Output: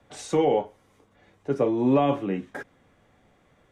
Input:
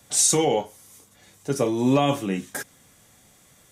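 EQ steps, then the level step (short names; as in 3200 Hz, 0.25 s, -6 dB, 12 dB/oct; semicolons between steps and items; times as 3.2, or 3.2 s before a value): three-band isolator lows -15 dB, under 290 Hz, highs -12 dB, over 3400 Hz; RIAA curve playback; -1.5 dB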